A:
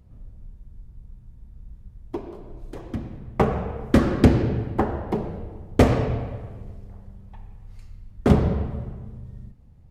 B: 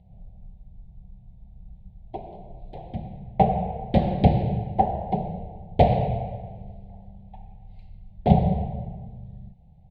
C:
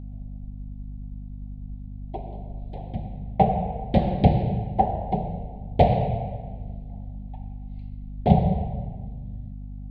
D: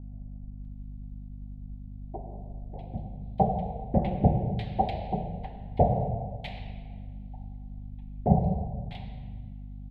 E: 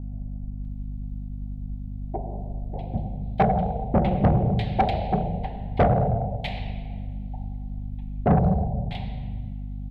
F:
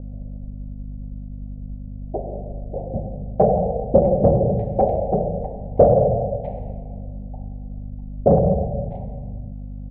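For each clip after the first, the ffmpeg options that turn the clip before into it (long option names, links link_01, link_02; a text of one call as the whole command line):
ffmpeg -i in.wav -af "firequalizer=gain_entry='entry(110,0);entry(180,8);entry(260,-12);entry(760,13);entry(1200,-27);entry(2100,-3);entry(3900,1);entry(5700,-24)':delay=0.05:min_phase=1,volume=-2.5dB" out.wav
ffmpeg -i in.wav -af "aeval=exprs='val(0)+0.0178*(sin(2*PI*50*n/s)+sin(2*PI*2*50*n/s)/2+sin(2*PI*3*50*n/s)/3+sin(2*PI*4*50*n/s)/4+sin(2*PI*5*50*n/s)/5)':channel_layout=same" out.wav
ffmpeg -i in.wav -filter_complex "[0:a]acrossover=split=1300[link_01][link_02];[link_02]adelay=650[link_03];[link_01][link_03]amix=inputs=2:normalize=0,volume=-4.5dB" out.wav
ffmpeg -i in.wav -af "asoftclip=type=tanh:threshold=-20.5dB,volume=8dB" out.wav
ffmpeg -i in.wav -af "lowpass=frequency=540:width_type=q:width=5.3" out.wav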